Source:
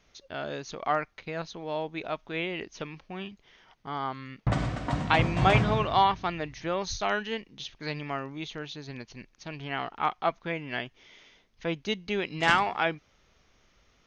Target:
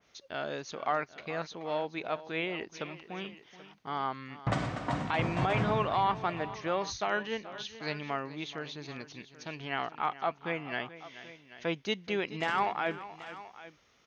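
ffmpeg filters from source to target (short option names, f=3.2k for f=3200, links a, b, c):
-af "highpass=87,lowshelf=f=290:g=-5,alimiter=limit=-18dB:level=0:latency=1:release=27,aecho=1:1:429|784:0.168|0.133,adynamicequalizer=threshold=0.00562:dfrequency=2400:dqfactor=0.7:tfrequency=2400:tqfactor=0.7:attack=5:release=100:ratio=0.375:range=3.5:mode=cutabove:tftype=highshelf"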